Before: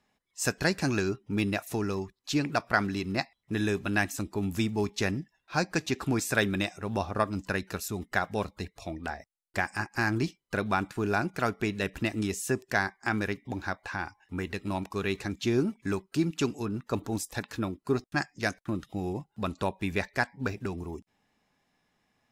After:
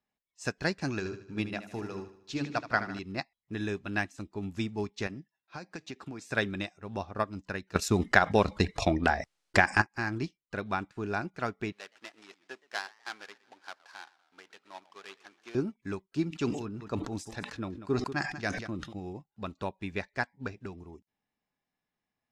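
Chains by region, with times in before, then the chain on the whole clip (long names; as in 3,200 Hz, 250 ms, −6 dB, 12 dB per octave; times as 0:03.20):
0:00.98–0:02.99: mains-hum notches 50/100/150/200/250/300/350/400 Hz + repeating echo 76 ms, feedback 59%, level −9 dB
0:05.07–0:06.27: high-pass filter 120 Hz + downward compressor 8 to 1, threshold −28 dBFS
0:07.75–0:09.82: transient designer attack +7 dB, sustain −9 dB + envelope flattener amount 70%
0:11.72–0:15.55: gap after every zero crossing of 0.17 ms + high-pass filter 690 Hz + feedback echo with a swinging delay time 124 ms, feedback 58%, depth 216 cents, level −16.5 dB
0:16.29–0:18.99: single-tap delay 192 ms −21.5 dB + level that may fall only so fast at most 40 dB per second
whole clip: low-pass filter 6,200 Hz 12 dB per octave; expander for the loud parts 1.5 to 1, over −46 dBFS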